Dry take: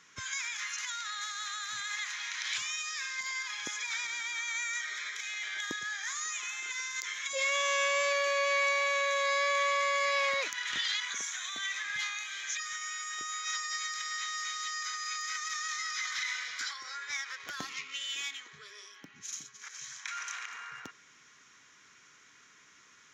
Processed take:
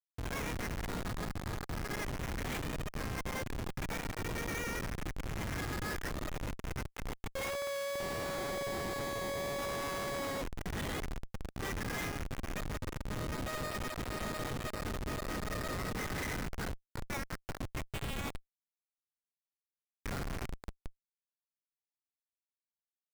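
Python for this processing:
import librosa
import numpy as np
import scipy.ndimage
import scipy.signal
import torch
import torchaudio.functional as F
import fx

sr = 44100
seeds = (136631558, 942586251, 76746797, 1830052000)

y = scipy.signal.sosfilt(scipy.signal.butter(2, 3100.0, 'lowpass', fs=sr, output='sos'), x)
y = fx.rider(y, sr, range_db=4, speed_s=2.0)
y = fx.schmitt(y, sr, flips_db=-31.5)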